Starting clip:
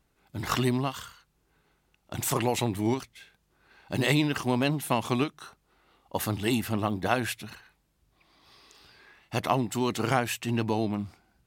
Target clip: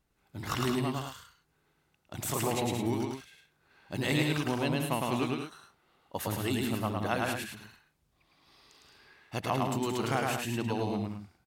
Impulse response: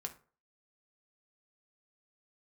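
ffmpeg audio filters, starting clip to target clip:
-af "aecho=1:1:107.9|174.9|212.8:0.794|0.398|0.355,volume=0.501"

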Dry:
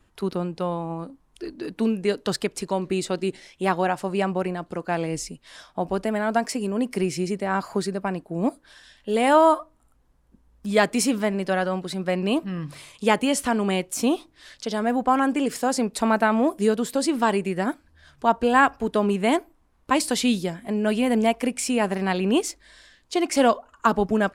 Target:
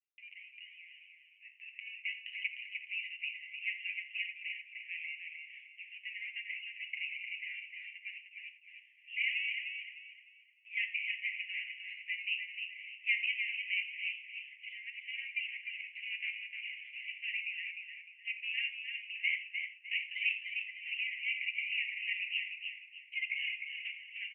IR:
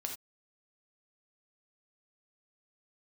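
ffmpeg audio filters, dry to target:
-filter_complex "[0:a]agate=range=0.0224:threshold=0.00562:ratio=3:detection=peak,asplit=2[s0][s1];[s1]acrusher=samples=15:mix=1:aa=0.000001:lfo=1:lforange=15:lforate=1.2,volume=0.299[s2];[s0][s2]amix=inputs=2:normalize=0,asoftclip=type=tanh:threshold=0.355,asuperpass=centerf=2400:order=12:qfactor=2.7,aecho=1:1:304|608|912|1216:0.501|0.165|0.0546|0.018,asplit=2[s3][s4];[1:a]atrim=start_sample=2205,adelay=8[s5];[s4][s5]afir=irnorm=-1:irlink=0,volume=0.708[s6];[s3][s6]amix=inputs=2:normalize=0"

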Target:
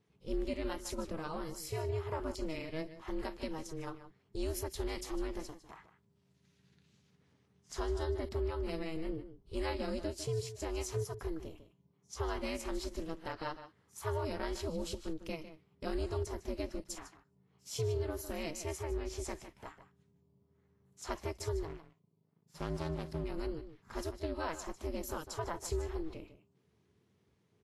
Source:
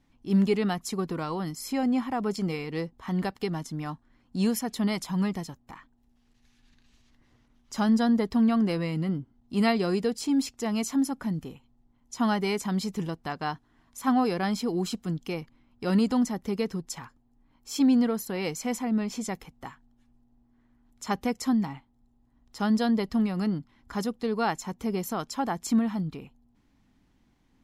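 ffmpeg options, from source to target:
-filter_complex "[0:a]acompressor=threshold=0.0447:ratio=2.5,asettb=1/sr,asplit=3[s0][s1][s2];[s0]atrim=end=21.674[s3];[s1]atrim=start=21.67:end=23.24,asetpts=PTS-STARTPTS,afade=t=in:d=0.004:c=qsin,afade=t=out:st=1.566:d=0.004:c=qsin,aeval=exprs='max(val(0),0)':c=same[s4];[s2]atrim=start=23.236[s5];[s3][s4]acrossfade=d=0.004:c1=hsin:c2=qsin[s6];[s6][s5]acrossfade=d=0.004:c1=qsin:c2=hsin,asplit=2[s7][s8];[s8]adelay=151.6,volume=0.251,highshelf=f=4000:g=-3.41[s9];[s7][s9]amix=inputs=2:normalize=0,aeval=exprs='val(0)*sin(2*PI*160*n/s)':c=same,volume=0.596" -ar 32000 -c:a libvorbis -b:a 32k

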